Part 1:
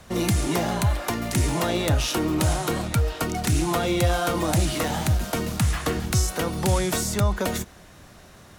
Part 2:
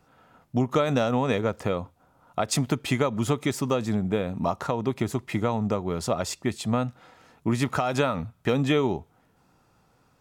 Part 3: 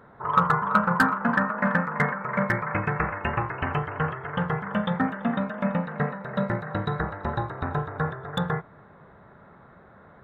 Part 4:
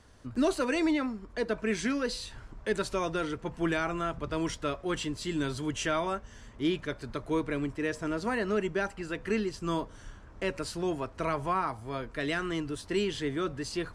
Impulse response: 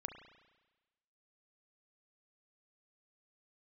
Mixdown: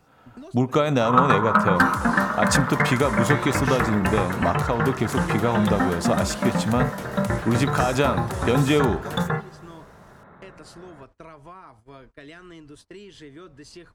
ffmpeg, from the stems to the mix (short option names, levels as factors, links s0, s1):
-filter_complex "[0:a]adelay=1650,volume=0.299[s0];[1:a]volume=1.12,asplit=3[s1][s2][s3];[s2]volume=0.376[s4];[2:a]adelay=800,volume=1,asplit=2[s5][s6];[s6]volume=0.501[s7];[3:a]agate=range=0.0708:threshold=0.01:ratio=16:detection=peak,acompressor=threshold=0.02:ratio=6,volume=0.501[s8];[s3]apad=whole_len=615142[s9];[s8][s9]sidechaincompress=threshold=0.0178:ratio=8:attack=16:release=120[s10];[4:a]atrim=start_sample=2205[s11];[s4][s7]amix=inputs=2:normalize=0[s12];[s12][s11]afir=irnorm=-1:irlink=0[s13];[s0][s1][s5][s10][s13]amix=inputs=5:normalize=0"